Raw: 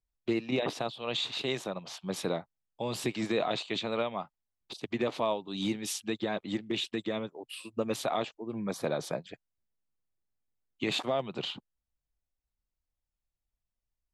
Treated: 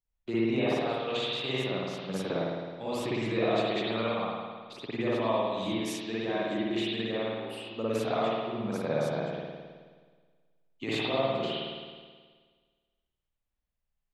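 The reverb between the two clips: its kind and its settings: spring tank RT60 1.6 s, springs 53 ms, chirp 55 ms, DRR -8.5 dB; trim -6 dB

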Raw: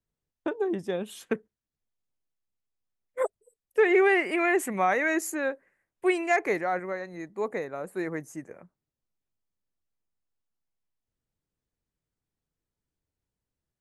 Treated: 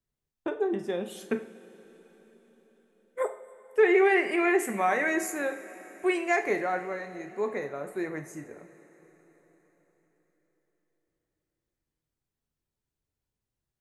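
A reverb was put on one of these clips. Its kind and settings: two-slope reverb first 0.45 s, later 4.8 s, from -18 dB, DRR 5.5 dB; trim -2 dB

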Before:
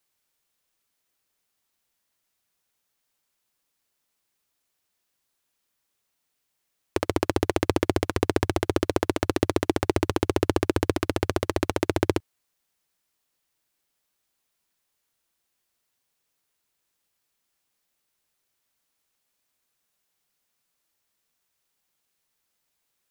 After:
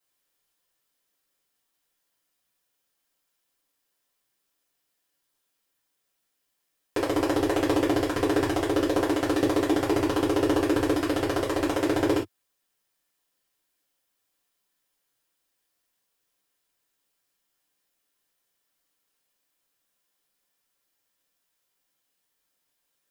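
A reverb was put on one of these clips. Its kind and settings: gated-style reverb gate 90 ms falling, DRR -7.5 dB; trim -8 dB

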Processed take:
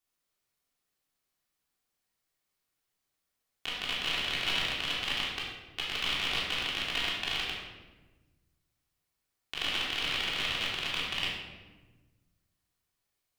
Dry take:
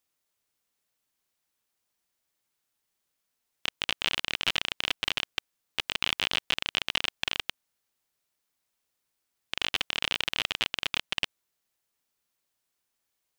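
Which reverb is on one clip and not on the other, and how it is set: simulated room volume 760 m³, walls mixed, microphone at 3.4 m; trim -8.5 dB

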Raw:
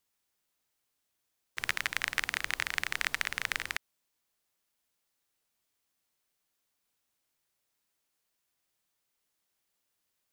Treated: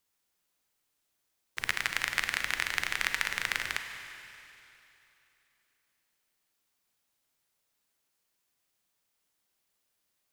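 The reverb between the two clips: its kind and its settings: Schroeder reverb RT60 3 s, combs from 33 ms, DRR 6.5 dB; trim +1 dB

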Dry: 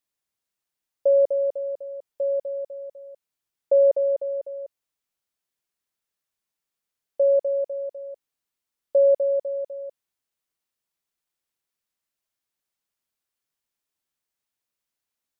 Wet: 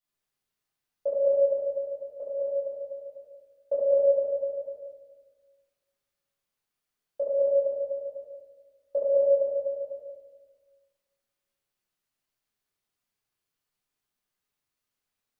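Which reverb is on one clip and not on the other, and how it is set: simulated room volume 930 m³, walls mixed, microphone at 7.2 m; trim -11 dB

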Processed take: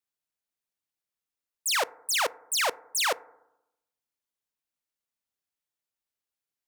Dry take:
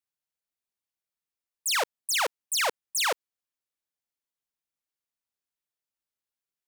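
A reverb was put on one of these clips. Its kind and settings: FDN reverb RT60 0.87 s, low-frequency decay 1.2×, high-frequency decay 0.25×, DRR 18.5 dB

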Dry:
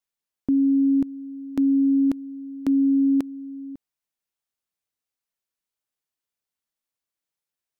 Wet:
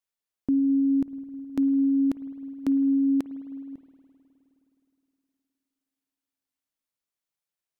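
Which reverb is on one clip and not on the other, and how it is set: spring tank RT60 3.3 s, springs 52 ms, chirp 80 ms, DRR 13 dB; trim -2.5 dB

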